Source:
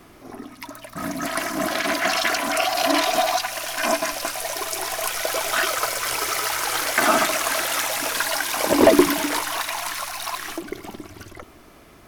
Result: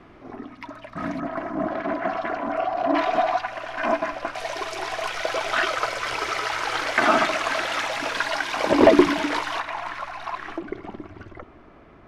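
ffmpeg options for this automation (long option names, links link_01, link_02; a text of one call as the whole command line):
ffmpeg -i in.wav -af "asetnsamples=nb_out_samples=441:pad=0,asendcmd='1.2 lowpass f 1000;2.95 lowpass f 1800;4.35 lowpass f 3600;9.6 lowpass f 1900',lowpass=2600" out.wav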